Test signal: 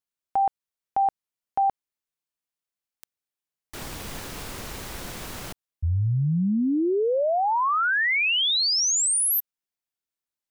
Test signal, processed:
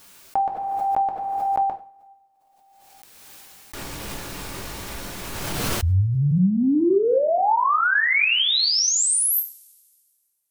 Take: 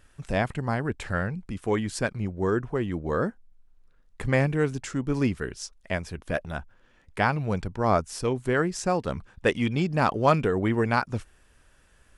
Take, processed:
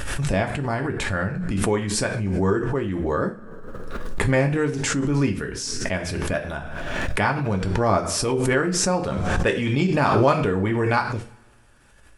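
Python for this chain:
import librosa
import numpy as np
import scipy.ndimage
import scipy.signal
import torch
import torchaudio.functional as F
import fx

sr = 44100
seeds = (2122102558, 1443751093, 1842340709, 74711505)

y = fx.rev_double_slope(x, sr, seeds[0], early_s=0.35, late_s=1.9, knee_db=-26, drr_db=2.0)
y = fx.pre_swell(y, sr, db_per_s=23.0)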